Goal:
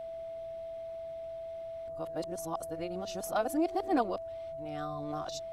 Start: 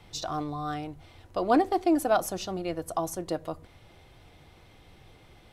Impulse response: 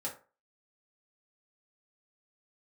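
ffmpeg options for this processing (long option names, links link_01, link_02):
-af "areverse,aeval=exprs='val(0)+0.0251*sin(2*PI*660*n/s)':channel_layout=same,volume=-6.5dB"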